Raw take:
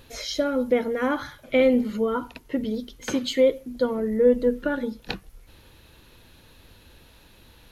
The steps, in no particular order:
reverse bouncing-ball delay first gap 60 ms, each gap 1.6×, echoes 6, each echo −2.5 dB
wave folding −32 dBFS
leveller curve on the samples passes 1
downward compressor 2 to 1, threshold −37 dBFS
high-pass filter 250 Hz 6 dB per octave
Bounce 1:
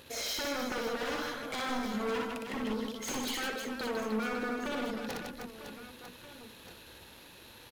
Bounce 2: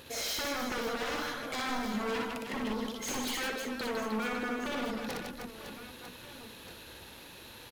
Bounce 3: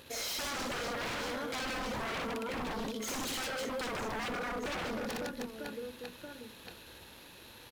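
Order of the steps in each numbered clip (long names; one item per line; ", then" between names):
leveller curve on the samples, then downward compressor, then high-pass filter, then wave folding, then reverse bouncing-ball delay
downward compressor, then leveller curve on the samples, then high-pass filter, then wave folding, then reverse bouncing-ball delay
leveller curve on the samples, then high-pass filter, then downward compressor, then reverse bouncing-ball delay, then wave folding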